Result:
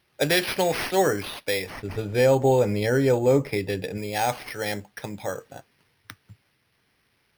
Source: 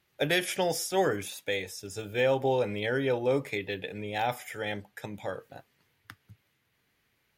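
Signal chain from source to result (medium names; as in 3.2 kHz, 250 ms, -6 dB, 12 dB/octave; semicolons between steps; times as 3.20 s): careless resampling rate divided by 6×, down none, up hold; 1.70–3.98 s: tilt EQ -2 dB/octave; trim +5 dB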